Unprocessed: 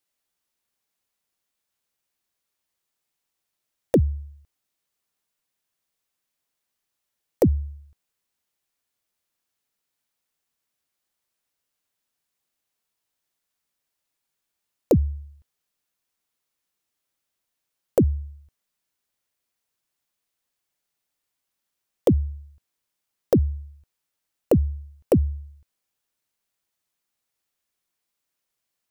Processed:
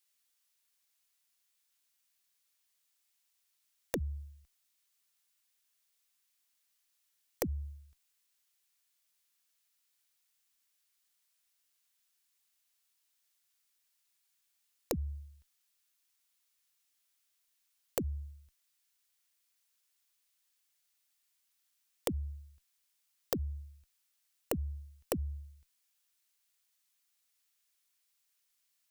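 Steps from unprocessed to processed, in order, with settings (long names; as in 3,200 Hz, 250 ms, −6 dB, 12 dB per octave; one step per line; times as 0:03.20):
parametric band 110 Hz −12.5 dB 0.97 octaves
downward compressor 3 to 1, threshold −25 dBFS, peak gain reduction 8 dB
guitar amp tone stack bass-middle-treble 5-5-5
level +10 dB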